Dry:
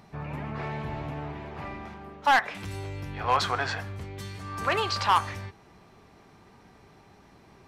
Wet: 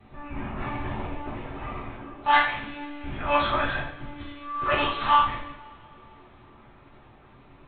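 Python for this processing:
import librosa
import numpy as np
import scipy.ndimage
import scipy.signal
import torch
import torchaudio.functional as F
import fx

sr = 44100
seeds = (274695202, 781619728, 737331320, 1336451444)

y = fx.lpc_monotone(x, sr, seeds[0], pitch_hz=290.0, order=16)
y = fx.vibrato(y, sr, rate_hz=1.8, depth_cents=12.0)
y = fx.rev_double_slope(y, sr, seeds[1], early_s=0.55, late_s=3.3, knee_db=-26, drr_db=-7.0)
y = y * librosa.db_to_amplitude(-5.0)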